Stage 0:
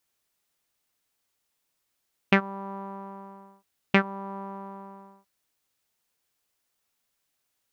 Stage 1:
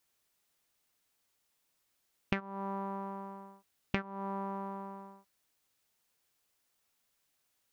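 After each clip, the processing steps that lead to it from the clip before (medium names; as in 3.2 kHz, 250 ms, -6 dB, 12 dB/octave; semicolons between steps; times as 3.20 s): compression 12:1, threshold -30 dBFS, peak gain reduction 15.5 dB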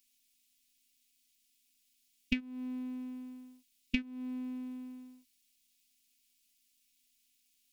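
FFT filter 210 Hz 0 dB, 670 Hz -27 dB, 1.1 kHz -29 dB, 1.7 kHz -16 dB, 2.4 kHz +1 dB; robot voice 253 Hz; trim +6 dB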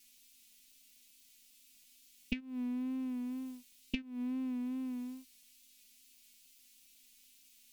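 compression 4:1, threshold -47 dBFS, peak gain reduction 18.5 dB; wow and flutter 49 cents; trim +10.5 dB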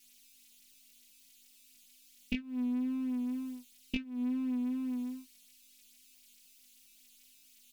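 doubling 20 ms -3.5 dB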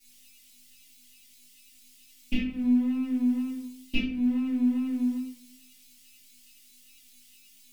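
simulated room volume 70 m³, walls mixed, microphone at 2.3 m; trim -4 dB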